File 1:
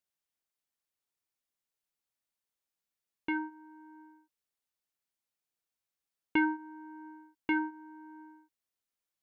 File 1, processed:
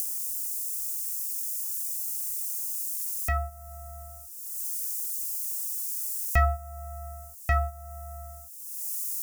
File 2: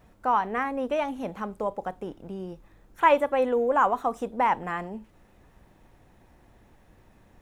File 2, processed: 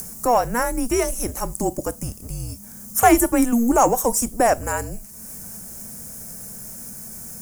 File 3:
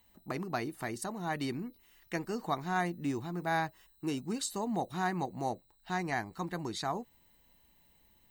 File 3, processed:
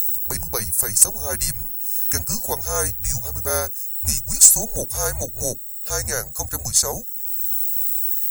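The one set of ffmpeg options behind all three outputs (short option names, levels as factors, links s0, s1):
-filter_complex "[0:a]asplit=2[s0][s1];[s1]acompressor=mode=upward:threshold=0.0178:ratio=2.5,volume=0.708[s2];[s0][s2]amix=inputs=2:normalize=0,afreqshift=-240,aexciter=amount=10.4:drive=9.7:freq=5400,asoftclip=type=tanh:threshold=0.708,aeval=exprs='0.708*(cos(1*acos(clip(val(0)/0.708,-1,1)))-cos(1*PI/2))+0.0141*(cos(2*acos(clip(val(0)/0.708,-1,1)))-cos(2*PI/2))+0.00562*(cos(6*acos(clip(val(0)/0.708,-1,1)))-cos(6*PI/2))':c=same,volume=1.19"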